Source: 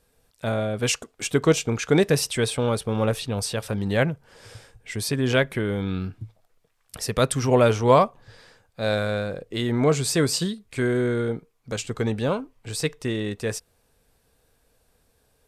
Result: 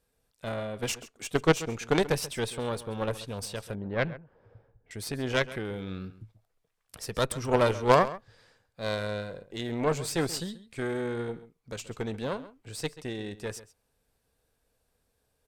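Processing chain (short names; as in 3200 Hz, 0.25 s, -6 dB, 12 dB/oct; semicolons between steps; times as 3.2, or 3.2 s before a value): added harmonics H 3 -13 dB, 4 -29 dB, 6 -19 dB, 8 -31 dB, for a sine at -4 dBFS; outdoor echo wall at 23 m, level -16 dB; 3.75–4.91 low-pass opened by the level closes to 780 Hz, open at -17 dBFS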